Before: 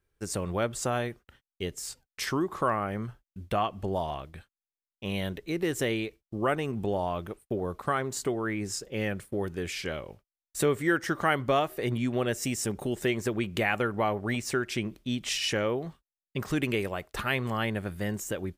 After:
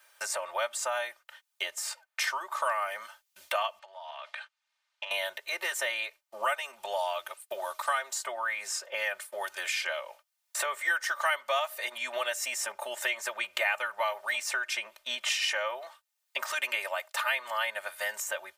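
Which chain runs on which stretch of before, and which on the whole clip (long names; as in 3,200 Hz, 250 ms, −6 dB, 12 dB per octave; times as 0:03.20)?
0:03.79–0:05.11: band-pass filter 700–3,900 Hz + downward compressor 16 to 1, threshold −46 dBFS
whole clip: inverse Chebyshev high-pass filter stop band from 330 Hz, stop band 40 dB; comb filter 3.3 ms, depth 96%; multiband upward and downward compressor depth 70%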